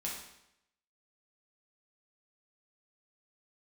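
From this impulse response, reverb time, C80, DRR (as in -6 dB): 0.80 s, 6.0 dB, -4.5 dB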